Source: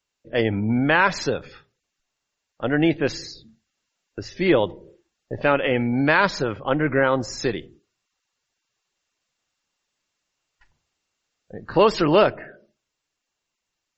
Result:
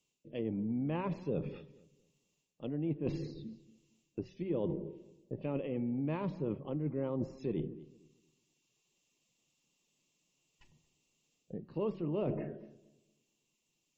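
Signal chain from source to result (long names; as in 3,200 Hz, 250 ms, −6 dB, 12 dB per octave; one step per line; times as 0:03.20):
drawn EQ curve 100 Hz 0 dB, 150 Hz +13 dB, 240 Hz +8 dB, 390 Hz +5 dB, 750 Hz −6 dB, 1,100 Hz −6 dB, 1,500 Hz −20 dB, 2,700 Hz +2 dB, 4,600 Hz −4 dB, 7,400 Hz +3 dB
reversed playback
downward compressor 12 to 1, threshold −30 dBFS, peak gain reduction 22.5 dB
reversed playback
low-shelf EQ 250 Hz −4.5 dB
hum removal 187.9 Hz, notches 10
on a send: feedback echo with a low-pass in the loop 230 ms, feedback 31%, low-pass 820 Hz, level −17.5 dB
on the sum: treble cut that deepens with the level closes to 1,500 Hz, closed at −35 dBFS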